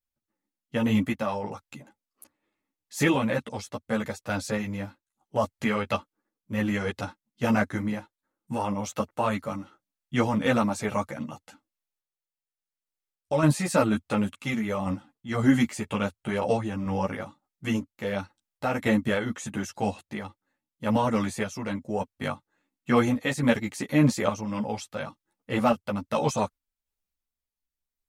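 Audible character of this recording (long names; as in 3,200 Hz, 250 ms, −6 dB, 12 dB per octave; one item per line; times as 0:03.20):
sample-and-hold tremolo 3.5 Hz
a shimmering, thickened sound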